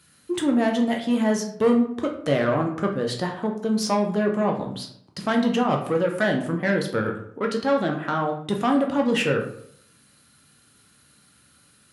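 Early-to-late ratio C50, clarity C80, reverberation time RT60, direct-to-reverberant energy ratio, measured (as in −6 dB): 8.0 dB, 11.5 dB, 0.70 s, 1.5 dB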